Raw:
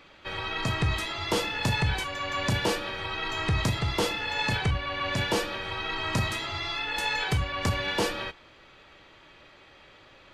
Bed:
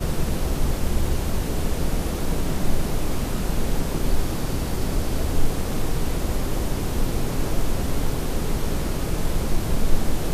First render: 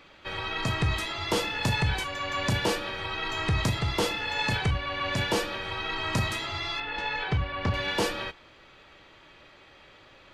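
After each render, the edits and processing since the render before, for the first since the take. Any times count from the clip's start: 6.8–7.74 air absorption 220 m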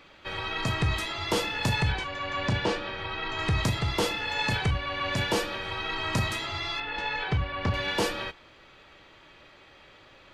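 1.92–3.39 air absorption 110 m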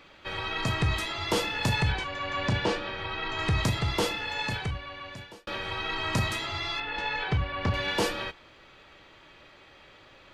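3.94–5.47 fade out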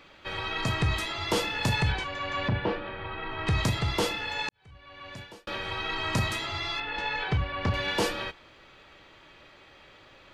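2.48–3.47 air absorption 370 m; 4.49–5.14 fade in quadratic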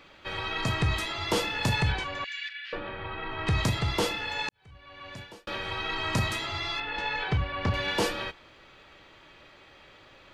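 2.24–2.73 steep high-pass 1700 Hz 48 dB/oct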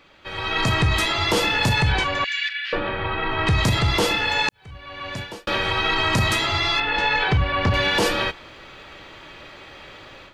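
AGC gain up to 11.5 dB; limiter -11 dBFS, peak gain reduction 6 dB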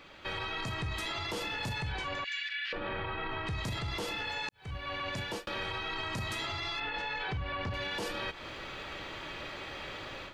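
compressor, threshold -29 dBFS, peak gain reduction 13 dB; limiter -28 dBFS, peak gain reduction 9.5 dB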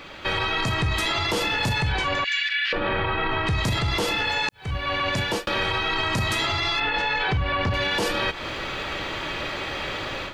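gain +12 dB

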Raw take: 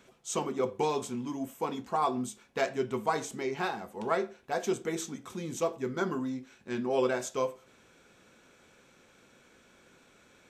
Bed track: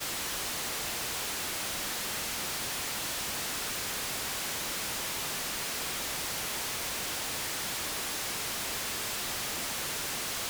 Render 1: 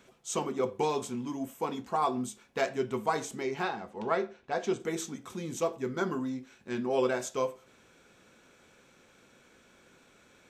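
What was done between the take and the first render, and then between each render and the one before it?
3.63–4.8 LPF 5300 Hz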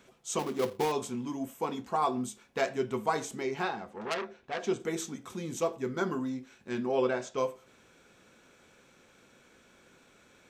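0.39–0.92 switching dead time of 0.17 ms; 3.84–4.67 core saturation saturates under 3900 Hz; 6.91–7.38 air absorption 100 m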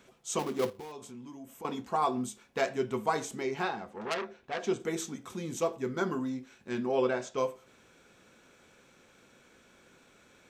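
0.7–1.65 compressor 2.5:1, threshold -48 dBFS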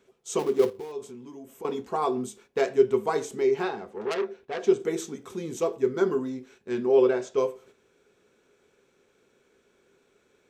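gate -56 dBFS, range -8 dB; bell 410 Hz +13.5 dB 0.38 oct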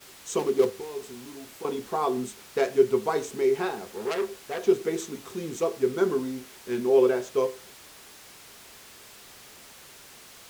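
add bed track -14.5 dB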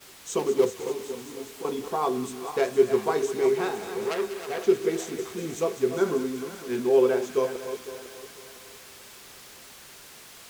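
regenerating reverse delay 0.252 s, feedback 54%, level -10 dB; thin delay 0.195 s, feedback 82%, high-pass 1600 Hz, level -10.5 dB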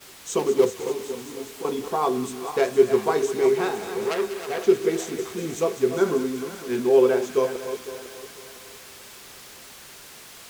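gain +3 dB

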